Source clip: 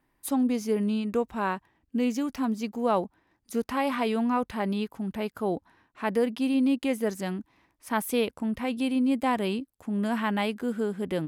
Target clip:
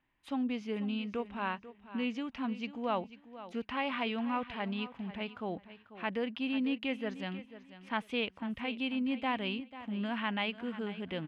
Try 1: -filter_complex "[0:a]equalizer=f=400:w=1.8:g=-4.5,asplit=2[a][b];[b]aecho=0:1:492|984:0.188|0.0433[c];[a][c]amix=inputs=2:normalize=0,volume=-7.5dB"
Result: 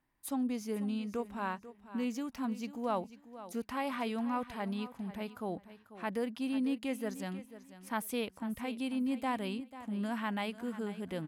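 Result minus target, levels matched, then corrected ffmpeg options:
4000 Hz band -5.5 dB
-filter_complex "[0:a]lowpass=f=2.9k:t=q:w=2.7,equalizer=f=400:w=1.8:g=-4.5,asplit=2[a][b];[b]aecho=0:1:492|984:0.188|0.0433[c];[a][c]amix=inputs=2:normalize=0,volume=-7.5dB"

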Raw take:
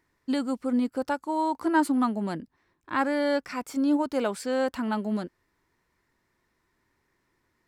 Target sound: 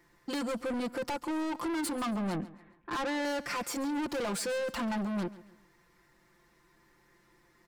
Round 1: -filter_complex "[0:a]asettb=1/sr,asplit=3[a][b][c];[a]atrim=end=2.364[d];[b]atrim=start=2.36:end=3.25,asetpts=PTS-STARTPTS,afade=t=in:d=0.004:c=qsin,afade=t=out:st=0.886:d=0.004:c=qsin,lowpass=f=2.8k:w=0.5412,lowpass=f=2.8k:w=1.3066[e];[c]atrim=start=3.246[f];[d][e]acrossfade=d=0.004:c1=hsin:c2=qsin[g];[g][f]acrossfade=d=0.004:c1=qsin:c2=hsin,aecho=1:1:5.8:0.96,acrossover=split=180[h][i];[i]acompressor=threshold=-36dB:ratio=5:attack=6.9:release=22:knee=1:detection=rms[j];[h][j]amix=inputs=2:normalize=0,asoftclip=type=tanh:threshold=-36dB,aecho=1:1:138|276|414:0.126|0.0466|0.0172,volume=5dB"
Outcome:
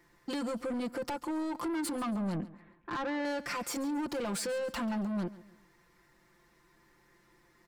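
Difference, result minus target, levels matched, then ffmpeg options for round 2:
compressor: peak gain reduction +7 dB
-filter_complex "[0:a]asettb=1/sr,asplit=3[a][b][c];[a]atrim=end=2.364[d];[b]atrim=start=2.36:end=3.25,asetpts=PTS-STARTPTS,afade=t=in:d=0.004:c=qsin,afade=t=out:st=0.886:d=0.004:c=qsin,lowpass=f=2.8k:w=0.5412,lowpass=f=2.8k:w=1.3066[e];[c]atrim=start=3.246[f];[d][e]acrossfade=d=0.004:c1=hsin:c2=qsin[g];[g][f]acrossfade=d=0.004:c1=qsin:c2=hsin,aecho=1:1:5.8:0.96,acrossover=split=180[h][i];[i]acompressor=threshold=-27dB:ratio=5:attack=6.9:release=22:knee=1:detection=rms[j];[h][j]amix=inputs=2:normalize=0,asoftclip=type=tanh:threshold=-36dB,aecho=1:1:138|276|414:0.126|0.0466|0.0172,volume=5dB"

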